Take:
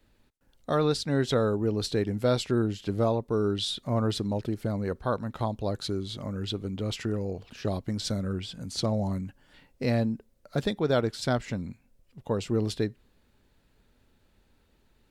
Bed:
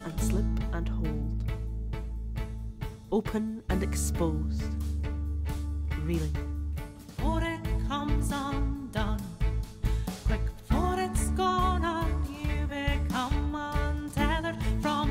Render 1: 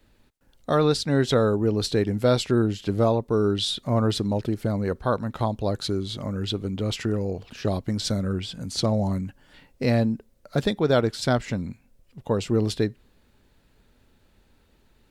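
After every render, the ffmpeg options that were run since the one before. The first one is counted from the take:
-af "volume=1.68"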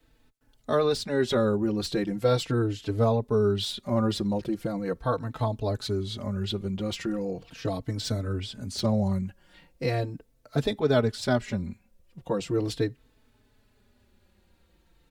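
-filter_complex "[0:a]acrossover=split=680|3100[s0][s1][s2];[s2]asoftclip=type=tanh:threshold=0.0531[s3];[s0][s1][s3]amix=inputs=3:normalize=0,asplit=2[s4][s5];[s5]adelay=4,afreqshift=-0.39[s6];[s4][s6]amix=inputs=2:normalize=1"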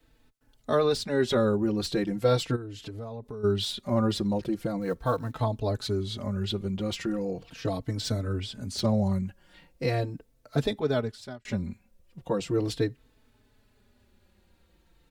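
-filter_complex "[0:a]asplit=3[s0][s1][s2];[s0]afade=t=out:st=2.55:d=0.02[s3];[s1]acompressor=threshold=0.0178:ratio=8:attack=3.2:release=140:knee=1:detection=peak,afade=t=in:st=2.55:d=0.02,afade=t=out:st=3.43:d=0.02[s4];[s2]afade=t=in:st=3.43:d=0.02[s5];[s3][s4][s5]amix=inputs=3:normalize=0,asettb=1/sr,asplit=3[s6][s7][s8];[s6]atrim=end=4.814[s9];[s7]atrim=start=4.81:end=5.39,asetpts=PTS-STARTPTS,afade=t=in:d=0.004:c=qsin,afade=t=out:st=0.576:d=0.004:c=qsin,acrusher=bits=8:mode=log:mix=0:aa=0.000001[s10];[s8]atrim=start=5.386[s11];[s9][s10]acrossfade=d=0.004:c1=hsin:c2=qsin[s12];[s12][s11]acrossfade=d=0.004:c1=qsin:c2=hsin,asplit=2[s13][s14];[s13]atrim=end=11.45,asetpts=PTS-STARTPTS,afade=t=out:st=10.61:d=0.84[s15];[s14]atrim=start=11.45,asetpts=PTS-STARTPTS,afade=t=in:d=0.004:c=hsin[s16];[s15][s16]concat=n=2:v=0:a=1"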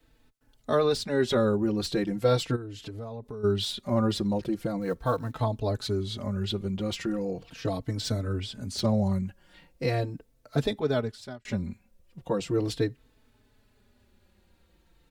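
-af anull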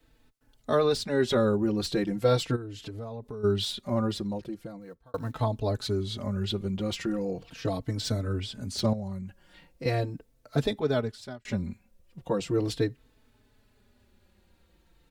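-filter_complex "[0:a]asettb=1/sr,asplit=3[s0][s1][s2];[s0]atrim=end=8.934[s3];[s1]atrim=start=8.93:end=9.86,asetpts=PTS-STARTPTS,afade=t=in:d=0.004:c=qsin,afade=t=out:st=0.926:d=0.004:c=qsin,acompressor=threshold=0.0112:ratio=2:attack=3.2:release=140:knee=1:detection=peak[s4];[s2]atrim=start=9.856[s5];[s3][s4]acrossfade=d=0.004:c1=hsin:c2=qsin[s6];[s6][s5]acrossfade=d=0.004:c1=qsin:c2=hsin,asplit=2[s7][s8];[s7]atrim=end=5.14,asetpts=PTS-STARTPTS,afade=t=out:st=3.63:d=1.51[s9];[s8]atrim=start=5.14,asetpts=PTS-STARTPTS,afade=t=in:d=0.004:c=hsin[s10];[s9][s10]concat=n=2:v=0:a=1"

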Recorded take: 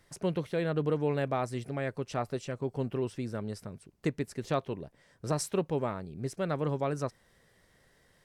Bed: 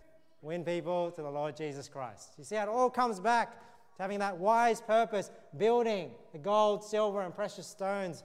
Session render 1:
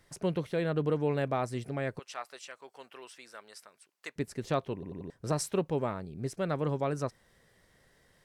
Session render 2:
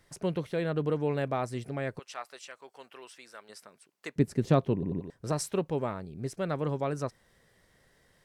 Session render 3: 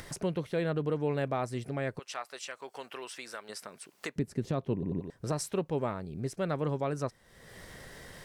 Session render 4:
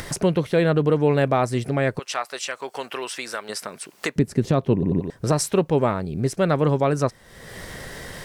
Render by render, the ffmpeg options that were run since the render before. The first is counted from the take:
-filter_complex "[0:a]asettb=1/sr,asplit=3[s0][s1][s2];[s0]atrim=end=1.994[s3];[s1]atrim=start=1.99:end=4.16,asetpts=PTS-STARTPTS,afade=t=in:d=0.004:c=qsin,afade=t=out:st=2.166:d=0.004:c=qsin,highpass=1100[s4];[s2]atrim=start=4.156[s5];[s3][s4]acrossfade=d=0.004:c1=hsin:c2=qsin[s6];[s6][s5]acrossfade=d=0.004:c1=qsin:c2=hsin,asplit=5[s7][s8][s9][s10][s11];[s7]atrim=end=4.832[s12];[s8]atrim=start=4.738:end=4.832[s13];[s9]atrim=start=4.738:end=4.832[s14];[s10]atrim=start=4.738:end=4.832[s15];[s11]atrim=start=5.098[s16];[s12][s13]acrossfade=d=0.004:c1=hsin:c2=hsin[s17];[s17][s14]acrossfade=d=0.004:c1=hsin:c2=hsin[s18];[s18][s15]acrossfade=d=0.004:c1=hsin:c2=hsin[s19];[s19][s16]acrossfade=d=0.004:c1=hsin:c2=hsin"
-filter_complex "[0:a]asettb=1/sr,asplit=3[s0][s1][s2];[s0]atrim=end=3.494[s3];[s1]atrim=start=3.49:end=5,asetpts=PTS-STARTPTS,afade=t=in:d=0.004:c=qsin,afade=t=out:st=1.506:d=0.004:c=qsin,equalizer=f=170:w=0.41:g=11[s4];[s2]atrim=start=4.996[s5];[s3][s4]acrossfade=d=0.004:c1=hsin:c2=qsin[s6];[s6][s5]acrossfade=d=0.004:c1=qsin:c2=hsin"
-af "alimiter=limit=0.0891:level=0:latency=1:release=279,acompressor=mode=upward:threshold=0.0224:ratio=2.5"
-af "volume=3.98"

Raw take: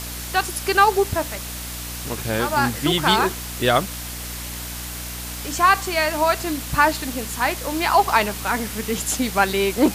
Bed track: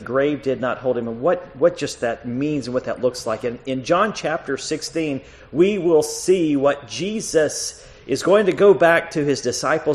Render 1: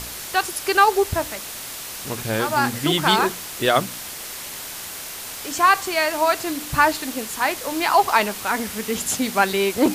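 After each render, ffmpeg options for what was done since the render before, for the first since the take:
-af "bandreject=f=60:t=h:w=4,bandreject=f=120:t=h:w=4,bandreject=f=180:t=h:w=4,bandreject=f=240:t=h:w=4,bandreject=f=300:t=h:w=4"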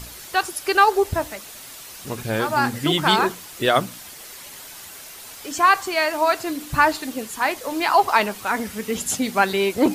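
-af "afftdn=nr=8:nf=-34"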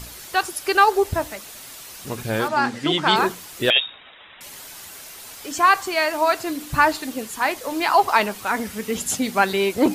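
-filter_complex "[0:a]asettb=1/sr,asplit=3[s0][s1][s2];[s0]atrim=end=2.484[s3];[s1]atrim=start=2.48:end=3.16,asetpts=PTS-STARTPTS,afade=t=in:d=0.004:c=qsin,afade=t=out:st=0.676:d=0.004:c=qsin,highpass=190,lowpass=6100[s4];[s2]atrim=start=3.156[s5];[s3][s4]acrossfade=d=0.004:c1=hsin:c2=qsin[s6];[s6][s5]acrossfade=d=0.004:c1=qsin:c2=hsin,asettb=1/sr,asplit=3[s7][s8][s9];[s7]atrim=end=3.704[s10];[s8]atrim=start=3.7:end=4.41,asetpts=PTS-STARTPTS,afade=t=in:d=0.004:c=qsin,afade=t=out:st=0.706:d=0.004:c=qsin,lowpass=f=3300:t=q:w=0.5098,lowpass=f=3300:t=q:w=0.6013,lowpass=f=3300:t=q:w=0.9,lowpass=f=3300:t=q:w=2.563,afreqshift=-3900[s11];[s9]atrim=start=4.406[s12];[s10][s11]acrossfade=d=0.004:c1=hsin:c2=qsin[s13];[s13][s12]acrossfade=d=0.004:c1=qsin:c2=hsin"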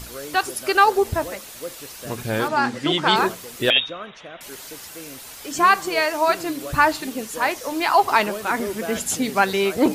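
-filter_complex "[1:a]volume=0.133[s0];[0:a][s0]amix=inputs=2:normalize=0"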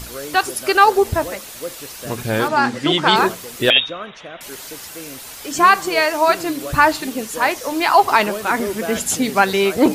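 -af "volume=1.58,alimiter=limit=0.891:level=0:latency=1"

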